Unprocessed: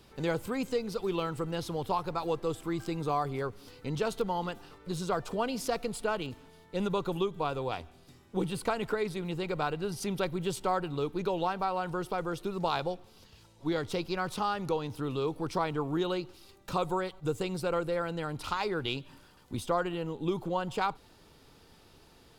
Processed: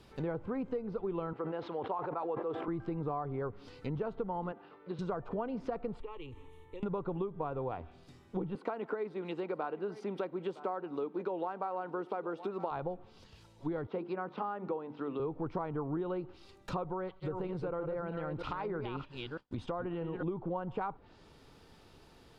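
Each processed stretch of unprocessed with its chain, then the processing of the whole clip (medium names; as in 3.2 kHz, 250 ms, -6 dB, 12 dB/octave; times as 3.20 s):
1.33–2.68 s: band-pass 370–4000 Hz + decay stretcher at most 43 dB/s
4.52–4.99 s: high-pass 260 Hz + distance through air 370 m
6.00–6.83 s: bass shelf 150 Hz +10.5 dB + compression 4:1, threshold -39 dBFS + static phaser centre 1 kHz, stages 8
8.55–12.71 s: high-pass 230 Hz 24 dB/octave + treble shelf 4.8 kHz +10.5 dB + delay 963 ms -19 dB
13.87–15.20 s: high-pass 200 Hz 24 dB/octave + distance through air 160 m + hum notches 50/100/150/200/250/300/350/400 Hz
16.84–20.23 s: chunks repeated in reverse 317 ms, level -7.5 dB + expander -44 dBFS + compression 2:1, threshold -33 dBFS
whole clip: low-pass that closes with the level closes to 1.3 kHz, closed at -31 dBFS; compression, threshold -32 dBFS; treble shelf 4.7 kHz -7 dB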